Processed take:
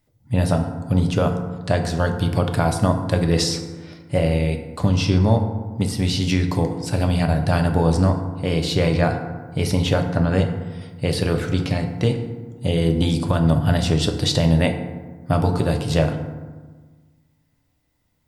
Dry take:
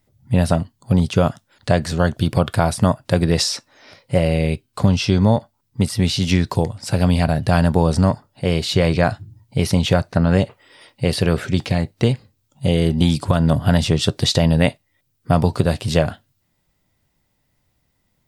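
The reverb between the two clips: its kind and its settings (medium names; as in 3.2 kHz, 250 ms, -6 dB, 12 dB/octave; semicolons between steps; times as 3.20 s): FDN reverb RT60 1.4 s, low-frequency decay 1.35×, high-frequency decay 0.45×, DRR 4.5 dB; trim -3.5 dB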